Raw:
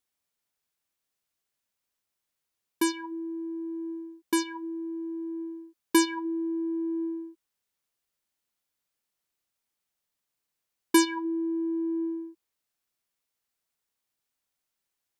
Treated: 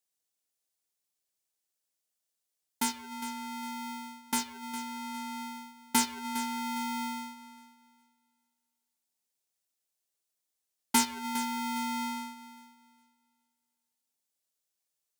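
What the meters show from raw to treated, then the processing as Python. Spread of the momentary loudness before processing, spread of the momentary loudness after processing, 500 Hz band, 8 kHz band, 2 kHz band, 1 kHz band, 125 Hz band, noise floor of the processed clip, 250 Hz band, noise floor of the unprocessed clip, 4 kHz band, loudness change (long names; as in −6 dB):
14 LU, 15 LU, −21.0 dB, +2.0 dB, −2.5 dB, +3.5 dB, can't be measured, −85 dBFS, −8.0 dB, −84 dBFS, 0.0 dB, −3.5 dB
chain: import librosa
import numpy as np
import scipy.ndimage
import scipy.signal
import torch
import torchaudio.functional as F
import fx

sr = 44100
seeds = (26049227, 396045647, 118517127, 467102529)

y = fx.graphic_eq_10(x, sr, hz=(500, 1000, 2000, 8000), db=(-8, -10, -9, 4))
y = fx.echo_thinned(y, sr, ms=407, feedback_pct=31, hz=330.0, wet_db=-13)
y = y * np.sign(np.sin(2.0 * np.pi * 570.0 * np.arange(len(y)) / sr))
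y = y * librosa.db_to_amplitude(-1.5)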